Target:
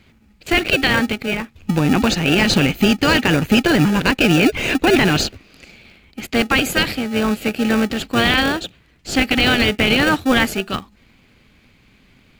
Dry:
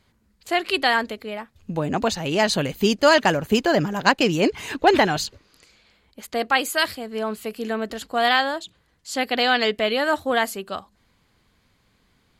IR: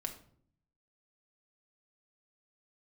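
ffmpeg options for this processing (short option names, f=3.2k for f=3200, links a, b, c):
-filter_complex "[0:a]equalizer=f=250:t=o:w=0.67:g=5,equalizer=f=630:t=o:w=0.67:g=-9,equalizer=f=2.5k:t=o:w=0.67:g=11,equalizer=f=10k:t=o:w=0.67:g=-5,asplit=2[a][b];[b]acrusher=samples=42:mix=1:aa=0.000001,volume=-3.5dB[c];[a][c]amix=inputs=2:normalize=0,alimiter=level_in=9dB:limit=-1dB:release=50:level=0:latency=1,volume=-3.5dB"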